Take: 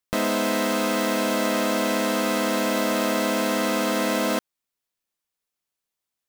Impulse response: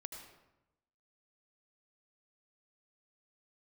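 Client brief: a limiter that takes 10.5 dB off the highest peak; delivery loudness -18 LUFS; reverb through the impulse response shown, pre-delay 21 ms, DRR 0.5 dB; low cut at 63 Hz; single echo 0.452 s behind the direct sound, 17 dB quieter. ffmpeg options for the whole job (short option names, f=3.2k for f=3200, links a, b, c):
-filter_complex "[0:a]highpass=63,alimiter=limit=-21dB:level=0:latency=1,aecho=1:1:452:0.141,asplit=2[a][b];[1:a]atrim=start_sample=2205,adelay=21[c];[b][c]afir=irnorm=-1:irlink=0,volume=3dB[d];[a][d]amix=inputs=2:normalize=0,volume=7.5dB"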